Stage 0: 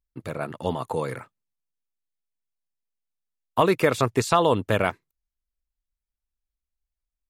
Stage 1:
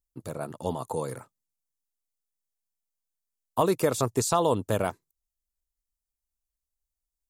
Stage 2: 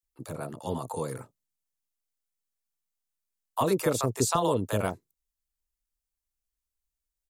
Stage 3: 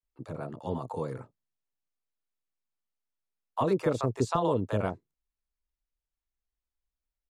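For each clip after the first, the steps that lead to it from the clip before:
EQ curve 910 Hz 0 dB, 2200 Hz -10 dB, 7000 Hz +8 dB; gain -3.5 dB
bands offset in time highs, lows 30 ms, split 640 Hz
tape spacing loss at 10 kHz 21 dB

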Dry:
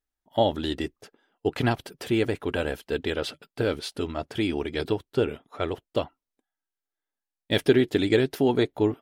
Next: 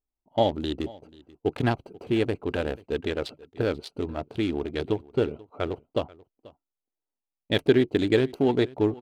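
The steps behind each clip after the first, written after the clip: Wiener smoothing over 25 samples; echo 0.486 s -22 dB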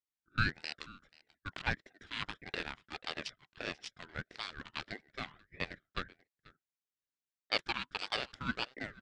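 Chebyshev band-pass 770–7000 Hz, order 3; ring modulator with a swept carrier 890 Hz, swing 35%, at 1.6 Hz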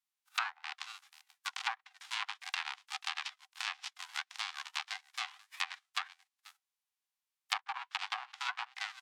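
spectral whitening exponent 0.3; rippled Chebyshev high-pass 750 Hz, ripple 3 dB; treble ducked by the level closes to 1100 Hz, closed at -34 dBFS; gain +6 dB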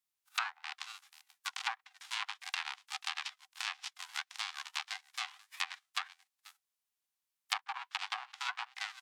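high shelf 6700 Hz +5 dB; gain -1 dB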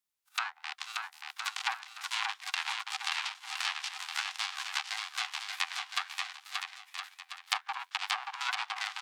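AGC gain up to 3.5 dB; on a send: bouncing-ball echo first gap 0.58 s, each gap 0.75×, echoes 5

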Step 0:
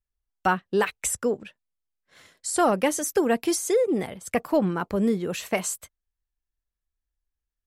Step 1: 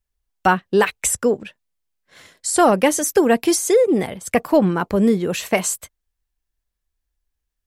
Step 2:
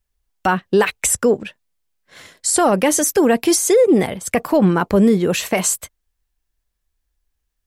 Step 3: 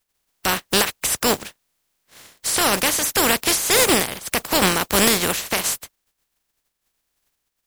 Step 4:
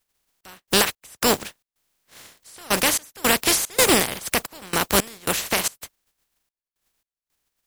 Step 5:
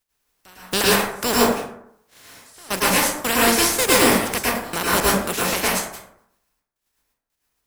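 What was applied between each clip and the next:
bell 1300 Hz -2.5 dB 0.2 oct; gain +7 dB
limiter -11 dBFS, peak gain reduction 7 dB; gain +4.5 dB
spectral contrast lowered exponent 0.31; gain -3.5 dB
step gate "xxx..xx..xxx.xx" 111 bpm -24 dB
plate-style reverb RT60 0.72 s, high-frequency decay 0.45×, pre-delay 95 ms, DRR -7 dB; gain -4 dB

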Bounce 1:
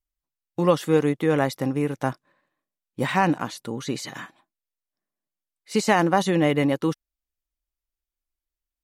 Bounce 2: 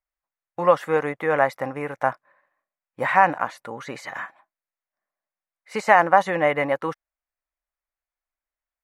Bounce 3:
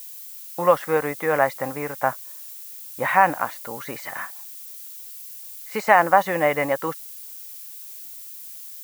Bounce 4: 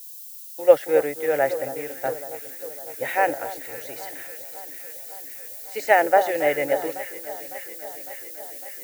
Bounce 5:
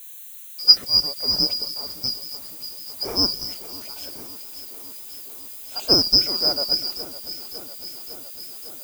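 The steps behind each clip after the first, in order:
band shelf 1100 Hz +15.5 dB 2.5 oct; gain -9.5 dB
added noise violet -39 dBFS
fixed phaser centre 450 Hz, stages 4; echo with dull and thin repeats by turns 0.277 s, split 1400 Hz, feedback 89%, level -9.5 dB; three-band expander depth 70%
four-band scrambler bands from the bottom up 2341

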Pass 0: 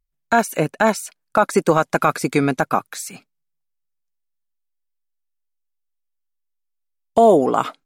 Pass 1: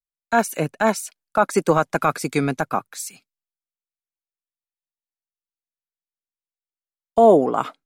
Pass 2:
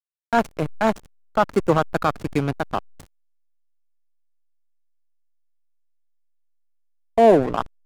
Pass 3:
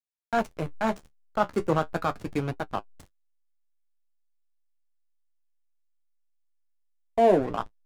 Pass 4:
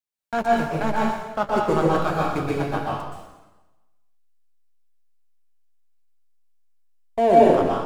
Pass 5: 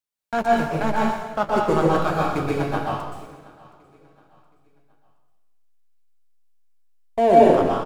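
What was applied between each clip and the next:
three-band expander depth 70%; gain -2.5 dB
backlash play -16.5 dBFS
flange 0.38 Hz, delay 8.3 ms, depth 6.6 ms, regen -44%; gain -2.5 dB
plate-style reverb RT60 1.1 s, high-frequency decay 0.95×, pre-delay 0.11 s, DRR -5 dB
feedback echo 0.721 s, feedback 38%, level -23 dB; gain +1 dB

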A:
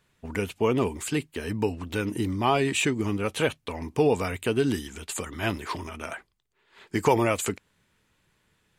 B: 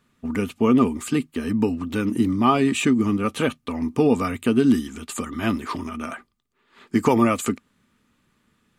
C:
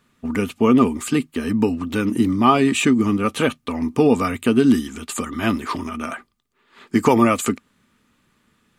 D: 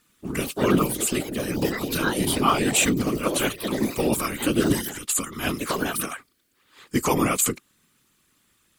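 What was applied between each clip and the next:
small resonant body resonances 240/1200 Hz, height 14 dB, ringing for 50 ms
low shelf 330 Hz -2.5 dB; gain +4 dB
pre-emphasis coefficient 0.8; echoes that change speed 92 ms, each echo +4 st, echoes 3, each echo -6 dB; whisperiser; gain +6.5 dB

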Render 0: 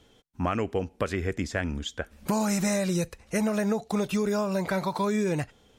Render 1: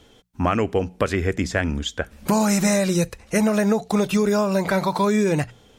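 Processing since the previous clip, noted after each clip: notches 60/120/180 Hz; gain +7 dB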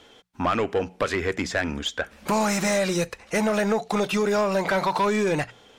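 overdrive pedal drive 17 dB, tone 3400 Hz, clips at -7 dBFS; gain -6 dB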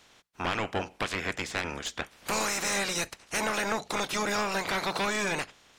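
spectral limiter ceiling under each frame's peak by 19 dB; gain -6.5 dB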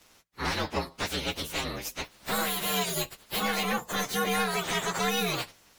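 inharmonic rescaling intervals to 121%; gain +4.5 dB

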